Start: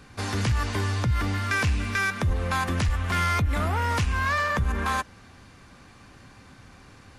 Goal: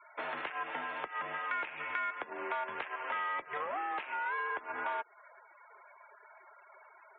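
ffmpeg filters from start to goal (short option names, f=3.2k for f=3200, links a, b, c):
-af "highpass=f=570:t=q:w=0.5412,highpass=f=570:t=q:w=1.307,lowpass=f=3k:t=q:w=0.5176,lowpass=f=3k:t=q:w=0.7071,lowpass=f=3k:t=q:w=1.932,afreqshift=-140,afftfilt=real='re*gte(hypot(re,im),0.00398)':imag='im*gte(hypot(re,im),0.00398)':win_size=1024:overlap=0.75,acompressor=threshold=-36dB:ratio=3"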